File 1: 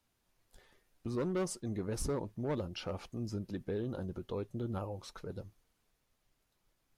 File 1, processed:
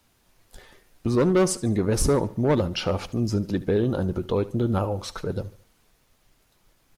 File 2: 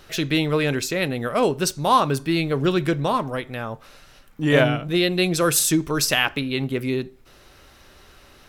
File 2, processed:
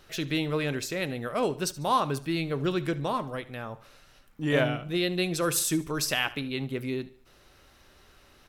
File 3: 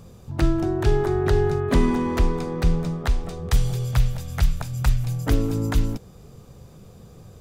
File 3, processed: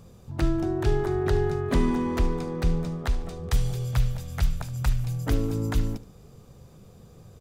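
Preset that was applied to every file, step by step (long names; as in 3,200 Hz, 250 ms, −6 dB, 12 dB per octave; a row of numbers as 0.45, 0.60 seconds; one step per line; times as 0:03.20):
repeating echo 73 ms, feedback 42%, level −18.5 dB
normalise the peak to −12 dBFS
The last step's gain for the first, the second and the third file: +14.5, −7.5, −4.5 decibels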